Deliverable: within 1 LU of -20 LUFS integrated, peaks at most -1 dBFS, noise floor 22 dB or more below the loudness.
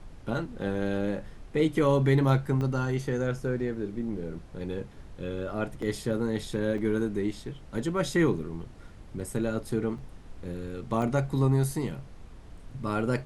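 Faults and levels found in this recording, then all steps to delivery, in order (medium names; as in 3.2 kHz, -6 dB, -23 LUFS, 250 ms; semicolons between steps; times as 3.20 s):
dropouts 5; longest dropout 3.6 ms; noise floor -47 dBFS; noise floor target -52 dBFS; loudness -29.5 LUFS; peak level -11.5 dBFS; loudness target -20.0 LUFS
-> interpolate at 2.61/5.82/6.78/9.98/11.02 s, 3.6 ms; noise print and reduce 6 dB; trim +9.5 dB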